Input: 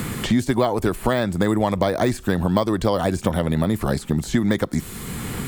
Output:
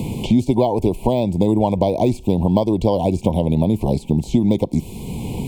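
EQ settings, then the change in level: elliptic band-stop 940–2400 Hz, stop band 40 dB; high shelf 3400 Hz -12 dB; +4.0 dB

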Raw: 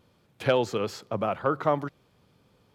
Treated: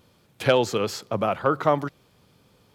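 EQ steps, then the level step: high shelf 3900 Hz +6.5 dB; +3.5 dB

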